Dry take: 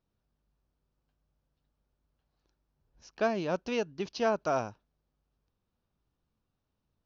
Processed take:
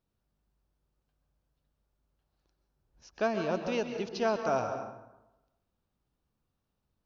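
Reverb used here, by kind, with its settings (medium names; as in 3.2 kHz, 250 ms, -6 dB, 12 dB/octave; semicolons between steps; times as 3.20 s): plate-style reverb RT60 0.97 s, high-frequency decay 0.55×, pre-delay 115 ms, DRR 5.5 dB; trim -1 dB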